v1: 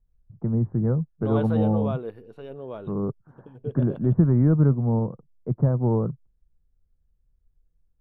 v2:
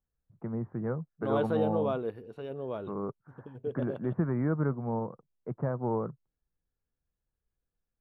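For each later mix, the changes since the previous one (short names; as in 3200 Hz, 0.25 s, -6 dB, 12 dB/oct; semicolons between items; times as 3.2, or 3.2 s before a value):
first voice: add tilt +4.5 dB/oct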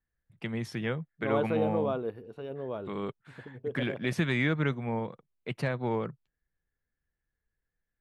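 first voice: remove steep low-pass 1300 Hz 36 dB/oct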